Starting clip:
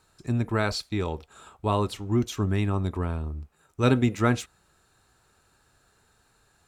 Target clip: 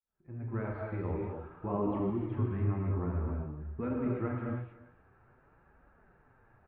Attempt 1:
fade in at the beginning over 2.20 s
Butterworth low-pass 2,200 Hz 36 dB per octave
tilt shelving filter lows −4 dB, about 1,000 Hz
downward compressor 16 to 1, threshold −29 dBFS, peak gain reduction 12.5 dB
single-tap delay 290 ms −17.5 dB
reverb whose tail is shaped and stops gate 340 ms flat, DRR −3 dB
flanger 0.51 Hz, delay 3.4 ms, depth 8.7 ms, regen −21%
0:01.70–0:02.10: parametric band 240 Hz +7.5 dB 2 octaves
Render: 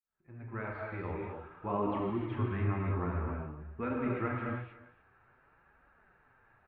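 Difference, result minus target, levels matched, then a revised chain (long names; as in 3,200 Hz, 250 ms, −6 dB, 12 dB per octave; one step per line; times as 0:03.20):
1,000 Hz band +5.0 dB
fade in at the beginning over 2.20 s
Butterworth low-pass 2,200 Hz 36 dB per octave
tilt shelving filter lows +3 dB, about 1,000 Hz
downward compressor 16 to 1, threshold −29 dBFS, peak gain reduction 17 dB
single-tap delay 290 ms −17.5 dB
reverb whose tail is shaped and stops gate 340 ms flat, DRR −3 dB
flanger 0.51 Hz, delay 3.4 ms, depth 8.7 ms, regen −21%
0:01.70–0:02.10: parametric band 240 Hz +7.5 dB 2 octaves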